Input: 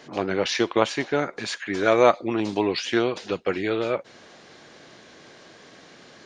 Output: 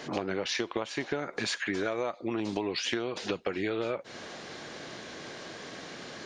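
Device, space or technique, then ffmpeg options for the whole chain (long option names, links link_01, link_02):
serial compression, peaks first: -af "acompressor=threshold=-27dB:ratio=10,acompressor=threshold=-38dB:ratio=2,volume=5.5dB"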